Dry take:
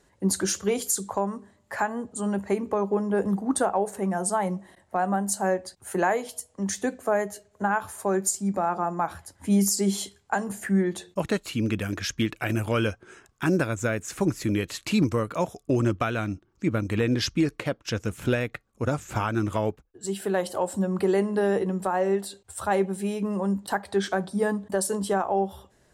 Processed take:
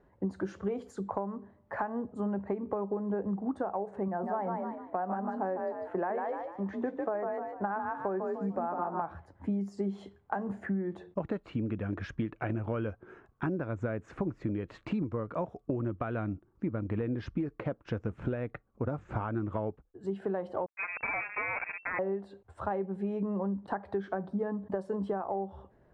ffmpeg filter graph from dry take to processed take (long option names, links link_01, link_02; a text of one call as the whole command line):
ffmpeg -i in.wav -filter_complex "[0:a]asettb=1/sr,asplit=3[link_01][link_02][link_03];[link_01]atrim=end=4.084[link_04];[link_02]atrim=start=4.08:end=9.02,asetpts=PTS-STARTPTS,afade=type=in:duration=0.004:curve=qsin,afade=type=out:start_time=4.936:duration=0.004:curve=qsin,acrossover=split=4500[link_05][link_06];[link_06]acompressor=threshold=-42dB:ratio=4:attack=1:release=60[link_07];[link_05][link_07]amix=inputs=2:normalize=0,bass=frequency=250:gain=-6,treble=frequency=4000:gain=-9,asplit=5[link_08][link_09][link_10][link_11][link_12];[link_09]adelay=149,afreqshift=39,volume=-4.5dB[link_13];[link_10]adelay=298,afreqshift=78,volume=-14.1dB[link_14];[link_11]adelay=447,afreqshift=117,volume=-23.8dB[link_15];[link_12]adelay=596,afreqshift=156,volume=-33.4dB[link_16];[link_08][link_13][link_14][link_15][link_16]amix=inputs=5:normalize=0,atrim=end_sample=217854[link_17];[link_03]atrim=start=9.016[link_18];[link_04][link_17]acrossfade=duration=0.004:curve1=hsin:curve2=qsin[link_19];[link_19][link_18]acrossfade=duration=0.004:curve1=qsin:curve2=hsin,asettb=1/sr,asplit=3[link_20][link_21][link_22];[link_20]atrim=end=20.664[link_23];[link_21]atrim=start=20.66:end=21.99,asetpts=PTS-STARTPTS,afade=type=in:duration=0.004:curve=qsin,afade=type=out:start_time=1.326:duration=0.004:curve=qsin,acrusher=bits=3:mix=0:aa=0.5,lowpass=frequency=2300:width_type=q:width=0.5098,lowpass=frequency=2300:width_type=q:width=0.6013,lowpass=frequency=2300:width_type=q:width=0.9,lowpass=frequency=2300:width_type=q:width=2.563,afreqshift=-2700[link_24];[link_22]atrim=start=21.986[link_25];[link_23][link_24]acrossfade=duration=0.004:curve1=hsin:curve2=qsin[link_26];[link_26][link_25]acrossfade=duration=0.004:curve1=qsin:curve2=hsin,lowpass=1200,acompressor=threshold=-29dB:ratio=10" out.wav